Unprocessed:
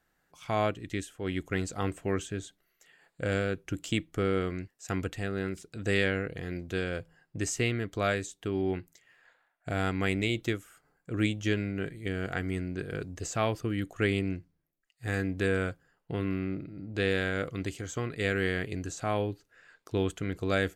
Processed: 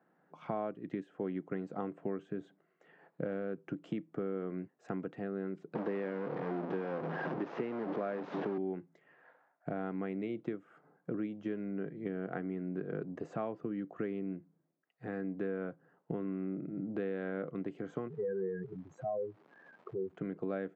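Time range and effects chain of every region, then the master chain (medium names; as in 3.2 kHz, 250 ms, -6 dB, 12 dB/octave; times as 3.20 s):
5.75–8.58 s: one-bit delta coder 32 kbps, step -27 dBFS + high-pass 180 Hz + treble shelf 3.6 kHz -6 dB
18.07–20.15 s: spectral contrast enhancement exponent 3.8 + peaking EQ 290 Hz -14.5 dB 0.23 oct + crackle 480 per s -46 dBFS
whole clip: low-pass 1 kHz 12 dB/octave; compression 10:1, threshold -40 dBFS; steep high-pass 150 Hz 36 dB/octave; trim +7.5 dB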